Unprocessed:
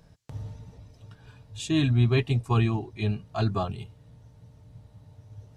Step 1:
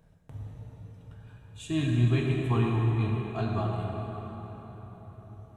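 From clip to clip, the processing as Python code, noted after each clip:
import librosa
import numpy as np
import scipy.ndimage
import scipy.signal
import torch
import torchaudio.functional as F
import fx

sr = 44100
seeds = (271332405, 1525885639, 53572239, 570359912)

y = fx.peak_eq(x, sr, hz=5000.0, db=-12.0, octaves=0.69)
y = fx.rev_plate(y, sr, seeds[0], rt60_s=4.7, hf_ratio=0.65, predelay_ms=0, drr_db=-1.5)
y = y * librosa.db_to_amplitude(-5.5)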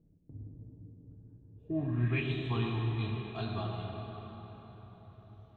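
y = fx.filter_sweep_lowpass(x, sr, from_hz=310.0, to_hz=3700.0, start_s=1.55, end_s=2.31, q=4.0)
y = y * librosa.db_to_amplitude(-7.0)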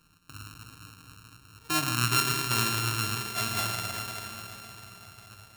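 y = np.r_[np.sort(x[:len(x) // 32 * 32].reshape(-1, 32), axis=1).ravel(), x[len(x) // 32 * 32:]]
y = fx.tilt_shelf(y, sr, db=-7.5, hz=1100.0)
y = y * librosa.db_to_amplitude(6.5)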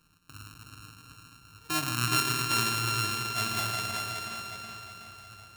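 y = fx.echo_feedback(x, sr, ms=373, feedback_pct=37, wet_db=-7.0)
y = y * librosa.db_to_amplitude(-2.5)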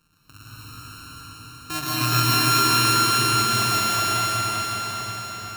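y = fx.rev_plate(x, sr, seeds[1], rt60_s=4.9, hf_ratio=0.9, predelay_ms=105, drr_db=-9.0)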